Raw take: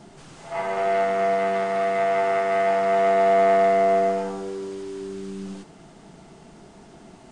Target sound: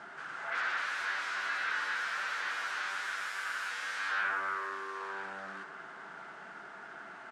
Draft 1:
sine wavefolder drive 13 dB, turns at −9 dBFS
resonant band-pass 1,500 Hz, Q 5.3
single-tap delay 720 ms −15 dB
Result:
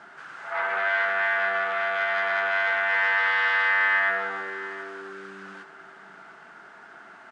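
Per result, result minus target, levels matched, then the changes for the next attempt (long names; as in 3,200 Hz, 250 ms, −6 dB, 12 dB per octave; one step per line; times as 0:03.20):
sine wavefolder: distortion −21 dB; echo 279 ms early
change: sine wavefolder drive 13 dB, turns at −20 dBFS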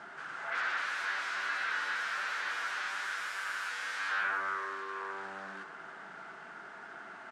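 echo 279 ms early
change: single-tap delay 999 ms −15 dB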